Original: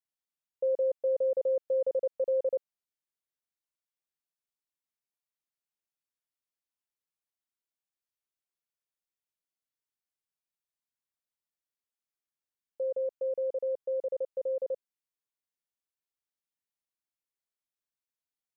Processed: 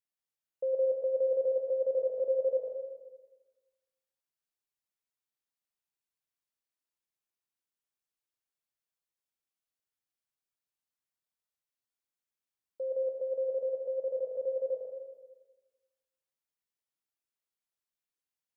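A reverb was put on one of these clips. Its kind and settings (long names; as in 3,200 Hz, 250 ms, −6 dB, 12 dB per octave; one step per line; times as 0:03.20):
dense smooth reverb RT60 1.3 s, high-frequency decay 0.95×, pre-delay 95 ms, DRR 1 dB
level −3.5 dB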